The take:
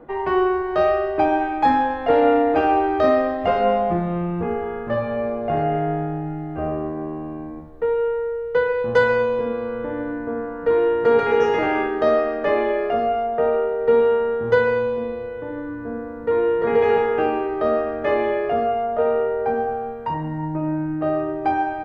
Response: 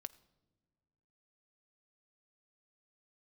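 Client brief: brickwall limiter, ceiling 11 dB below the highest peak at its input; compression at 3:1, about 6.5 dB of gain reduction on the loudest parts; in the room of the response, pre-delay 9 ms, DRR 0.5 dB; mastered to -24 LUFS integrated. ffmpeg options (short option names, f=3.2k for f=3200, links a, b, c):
-filter_complex "[0:a]acompressor=threshold=-21dB:ratio=3,alimiter=limit=-22dB:level=0:latency=1,asplit=2[a][b];[1:a]atrim=start_sample=2205,adelay=9[c];[b][c]afir=irnorm=-1:irlink=0,volume=4dB[d];[a][d]amix=inputs=2:normalize=0,volume=2.5dB"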